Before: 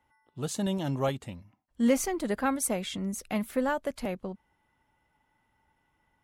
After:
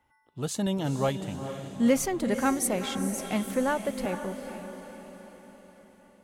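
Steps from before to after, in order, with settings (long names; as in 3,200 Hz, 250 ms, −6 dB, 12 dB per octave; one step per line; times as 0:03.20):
feedback delay with all-pass diffusion 463 ms, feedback 52%, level −9 dB
level +1.5 dB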